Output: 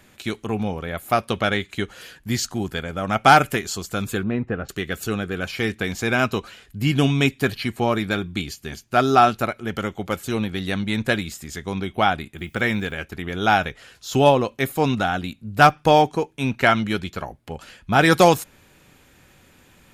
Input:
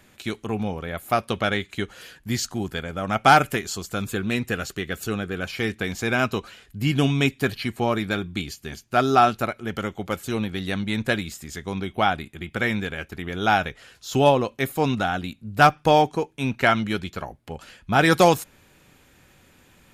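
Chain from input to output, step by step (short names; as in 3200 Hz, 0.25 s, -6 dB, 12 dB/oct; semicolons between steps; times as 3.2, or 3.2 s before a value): 4.23–4.69 LPF 1200 Hz 12 dB/oct; 12.37–12.94 added noise blue -66 dBFS; gain +2 dB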